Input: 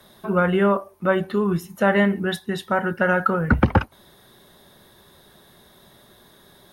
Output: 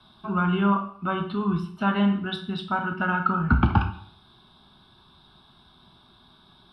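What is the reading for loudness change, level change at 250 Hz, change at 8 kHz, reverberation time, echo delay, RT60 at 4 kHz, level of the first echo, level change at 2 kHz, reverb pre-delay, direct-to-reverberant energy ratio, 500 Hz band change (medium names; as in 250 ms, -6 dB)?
-3.5 dB, -2.0 dB, under -15 dB, 0.60 s, no echo, 0.55 s, no echo, -5.5 dB, 4 ms, 4.5 dB, -12.0 dB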